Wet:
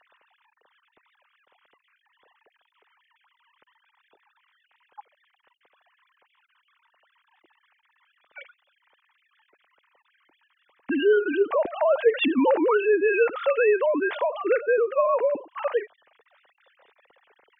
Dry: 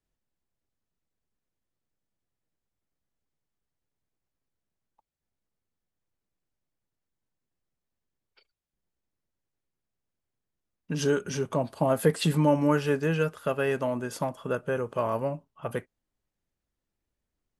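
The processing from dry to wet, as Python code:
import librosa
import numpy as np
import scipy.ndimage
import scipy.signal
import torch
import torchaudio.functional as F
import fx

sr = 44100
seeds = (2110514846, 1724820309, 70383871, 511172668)

y = fx.sine_speech(x, sr)
y = fx.env_flatten(y, sr, amount_pct=50)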